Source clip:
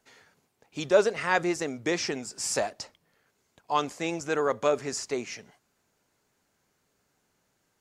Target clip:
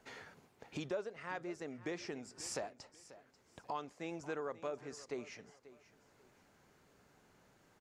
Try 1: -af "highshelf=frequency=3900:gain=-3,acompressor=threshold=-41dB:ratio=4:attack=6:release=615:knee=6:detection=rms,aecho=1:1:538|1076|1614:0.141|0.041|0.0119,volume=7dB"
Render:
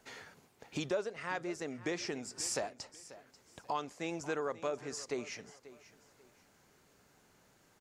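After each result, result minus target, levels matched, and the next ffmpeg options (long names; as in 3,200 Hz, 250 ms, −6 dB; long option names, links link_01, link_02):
downward compressor: peak gain reduction −4.5 dB; 8,000 Hz band +3.0 dB
-af "highshelf=frequency=3900:gain=-3,acompressor=threshold=-47.5dB:ratio=4:attack=6:release=615:knee=6:detection=rms,aecho=1:1:538|1076|1614:0.141|0.041|0.0119,volume=7dB"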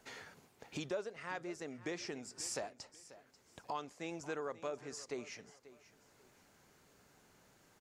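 8,000 Hz band +3.0 dB
-af "highshelf=frequency=3900:gain=-10.5,acompressor=threshold=-47.5dB:ratio=4:attack=6:release=615:knee=6:detection=rms,aecho=1:1:538|1076|1614:0.141|0.041|0.0119,volume=7dB"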